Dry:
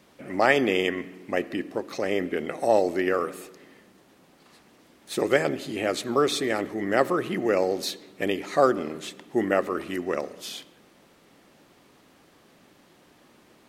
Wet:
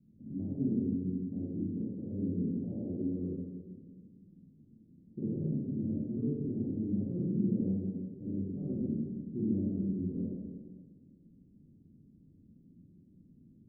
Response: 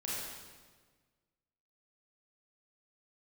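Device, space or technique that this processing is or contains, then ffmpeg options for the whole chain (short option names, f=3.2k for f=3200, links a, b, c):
club heard from the street: -filter_complex "[0:a]alimiter=limit=-14.5dB:level=0:latency=1,lowpass=f=220:w=0.5412,lowpass=f=220:w=1.3066[a];[1:a]atrim=start_sample=2205[b];[a][b]afir=irnorm=-1:irlink=0,volume=2.5dB"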